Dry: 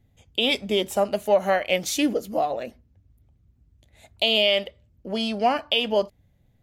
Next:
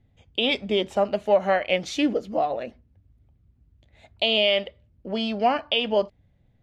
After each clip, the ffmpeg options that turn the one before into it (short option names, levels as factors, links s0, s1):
-af "lowpass=3900"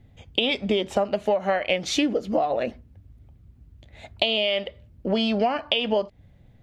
-af "acompressor=threshold=0.0398:ratio=12,volume=2.82"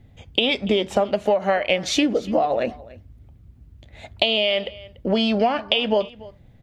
-af "aecho=1:1:289:0.0944,volume=1.41"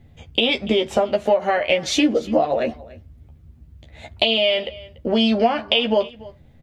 -filter_complex "[0:a]asplit=2[s0][s1];[s1]adelay=13,volume=0.596[s2];[s0][s2]amix=inputs=2:normalize=0"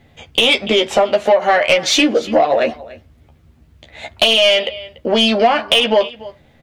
-filter_complex "[0:a]asplit=2[s0][s1];[s1]highpass=f=720:p=1,volume=6.31,asoftclip=type=tanh:threshold=0.891[s2];[s0][s2]amix=inputs=2:normalize=0,lowpass=f=6900:p=1,volume=0.501"